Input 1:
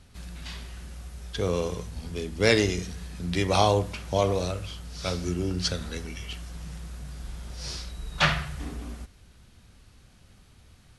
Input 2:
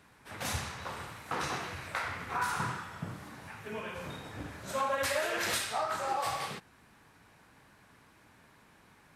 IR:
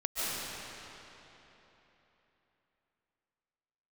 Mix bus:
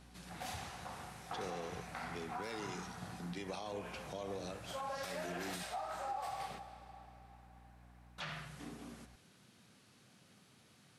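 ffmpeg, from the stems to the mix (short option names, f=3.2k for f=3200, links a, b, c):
-filter_complex "[0:a]highpass=f=140:w=0.5412,highpass=f=140:w=1.3066,acompressor=threshold=-49dB:ratio=1.5,volume=-4.5dB,asplit=3[a][b][c];[a]atrim=end=5.63,asetpts=PTS-STARTPTS,afade=t=out:st=5.626:d=0.004:c=hsin[d];[b]atrim=start=5.63:end=8.18,asetpts=PTS-STARTPTS,volume=0[e];[c]atrim=start=8.18,asetpts=PTS-STARTPTS,afade=t=in:d=0.004:c=hsin[f];[d][e][f]concat=n=3:v=0:a=1[g];[1:a]equalizer=f=750:t=o:w=0.28:g=13,aeval=exprs='val(0)+0.00316*(sin(2*PI*60*n/s)+sin(2*PI*2*60*n/s)/2+sin(2*PI*3*60*n/s)/3+sin(2*PI*4*60*n/s)/4+sin(2*PI*5*60*n/s)/5)':c=same,volume=-10.5dB,asplit=2[h][i];[i]volume=-20.5dB[j];[2:a]atrim=start_sample=2205[k];[j][k]afir=irnorm=-1:irlink=0[l];[g][h][l]amix=inputs=3:normalize=0,alimiter=level_in=9dB:limit=-24dB:level=0:latency=1:release=87,volume=-9dB"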